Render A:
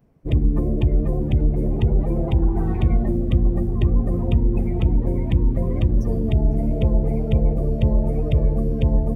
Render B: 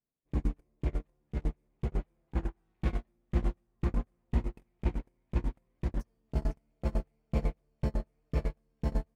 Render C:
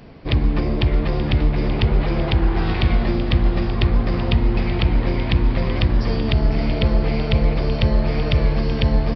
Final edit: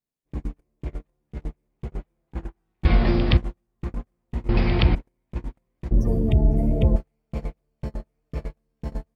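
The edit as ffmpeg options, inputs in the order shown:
-filter_complex "[2:a]asplit=2[s0][s1];[1:a]asplit=4[s2][s3][s4][s5];[s2]atrim=end=2.852[s6];[s0]atrim=start=2.848:end=3.372[s7];[s3]atrim=start=3.368:end=4.492[s8];[s1]atrim=start=4.488:end=4.952[s9];[s4]atrim=start=4.948:end=5.912[s10];[0:a]atrim=start=5.908:end=6.962[s11];[s5]atrim=start=6.958[s12];[s6][s7]acrossfade=d=0.004:c1=hsin:c2=hsin[s13];[s13][s8]acrossfade=d=0.004:c1=hsin:c2=hsin[s14];[s14][s9]acrossfade=d=0.004:c1=hsin:c2=hsin[s15];[s15][s10]acrossfade=d=0.004:c1=hsin:c2=hsin[s16];[s16][s11]acrossfade=d=0.004:c1=hsin:c2=hsin[s17];[s17][s12]acrossfade=d=0.004:c1=hsin:c2=hsin"

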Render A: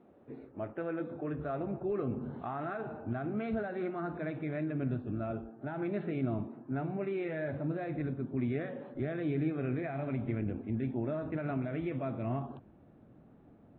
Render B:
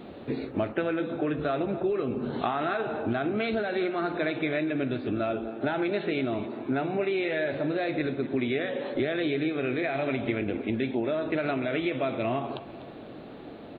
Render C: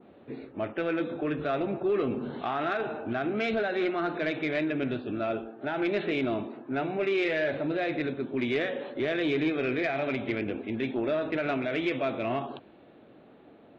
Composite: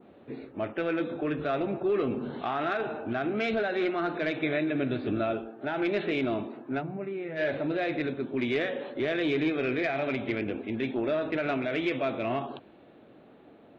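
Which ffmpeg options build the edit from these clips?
-filter_complex "[2:a]asplit=3[s0][s1][s2];[s0]atrim=end=4.432[s3];[1:a]atrim=start=4.428:end=5.342[s4];[s1]atrim=start=5.338:end=6.83[s5];[0:a]atrim=start=6.77:end=7.41[s6];[s2]atrim=start=7.35[s7];[s3][s4]acrossfade=d=0.004:c1=hsin:c2=hsin[s8];[s8][s5]acrossfade=d=0.004:c1=hsin:c2=hsin[s9];[s9][s6]acrossfade=d=0.06:c1=tri:c2=tri[s10];[s10][s7]acrossfade=d=0.06:c1=tri:c2=tri"

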